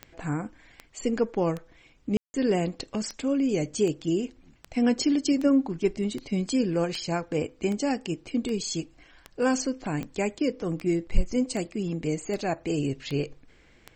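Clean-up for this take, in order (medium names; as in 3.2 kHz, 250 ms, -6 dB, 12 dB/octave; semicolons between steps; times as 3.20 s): de-click; room tone fill 2.17–2.34 s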